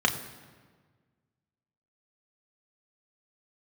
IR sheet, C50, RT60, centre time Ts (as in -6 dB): 11.5 dB, 1.5 s, 17 ms